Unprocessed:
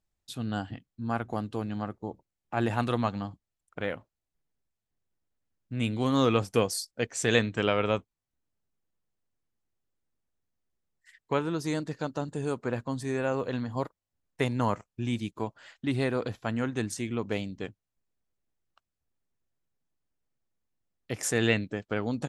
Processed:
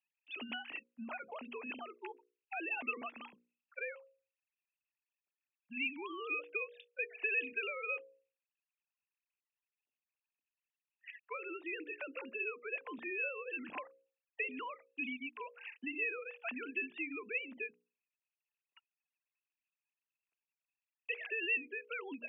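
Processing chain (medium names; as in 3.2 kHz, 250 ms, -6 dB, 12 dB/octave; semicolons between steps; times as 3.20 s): formants replaced by sine waves; bass shelf 280 Hz -8 dB; hum notches 60/120/180/240/300/360/420/480/540 Hz; peak limiter -21 dBFS, peak gain reduction 7.5 dB; compression, threshold -38 dBFS, peak gain reduction 12.5 dB; resonant low-pass 2.6 kHz, resonance Q 13; trim -5 dB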